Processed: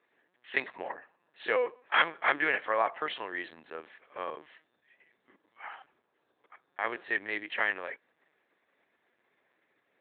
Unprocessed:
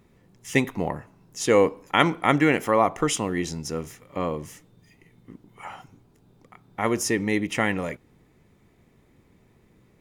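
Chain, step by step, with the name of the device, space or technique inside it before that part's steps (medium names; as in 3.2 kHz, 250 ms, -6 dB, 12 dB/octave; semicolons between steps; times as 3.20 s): talking toy (LPC vocoder at 8 kHz pitch kept; high-pass 610 Hz 12 dB/octave; peaking EQ 1.7 kHz +9.5 dB 0.26 oct); trim -5.5 dB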